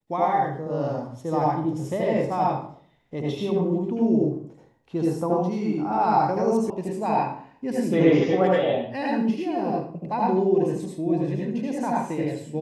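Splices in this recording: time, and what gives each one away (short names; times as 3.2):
6.7 sound cut off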